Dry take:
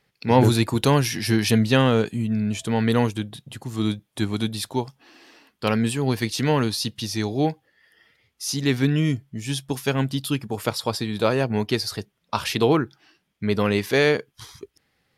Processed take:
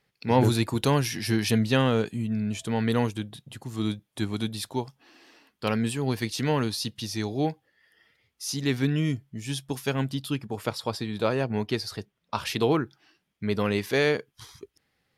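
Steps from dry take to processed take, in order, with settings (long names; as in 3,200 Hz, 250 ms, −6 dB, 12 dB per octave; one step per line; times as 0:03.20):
0:10.14–0:12.47: high-shelf EQ 5,700 Hz −5.5 dB
level −4.5 dB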